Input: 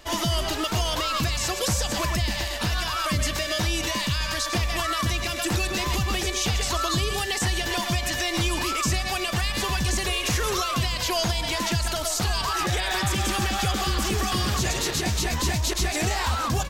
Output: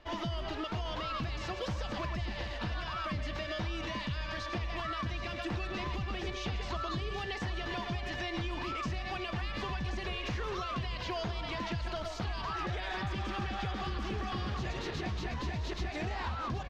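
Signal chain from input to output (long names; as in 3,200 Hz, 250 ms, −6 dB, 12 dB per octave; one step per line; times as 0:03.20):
high-frequency loss of the air 250 metres
downward compressor, threshold −25 dBFS, peak gain reduction 5 dB
on a send: single-tap delay 776 ms −12 dB
on the sum: level −7 dB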